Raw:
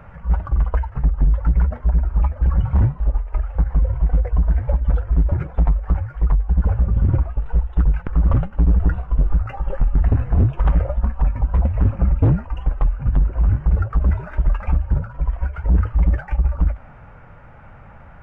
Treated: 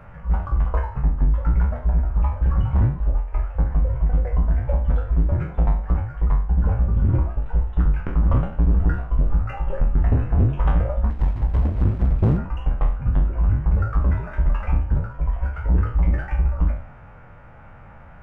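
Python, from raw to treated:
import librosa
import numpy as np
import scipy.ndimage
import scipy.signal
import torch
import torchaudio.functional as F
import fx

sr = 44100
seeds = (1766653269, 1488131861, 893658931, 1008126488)

y = fx.spec_trails(x, sr, decay_s=0.49)
y = fx.running_max(y, sr, window=65, at=(11.1, 12.38))
y = y * 10.0 ** (-3.0 / 20.0)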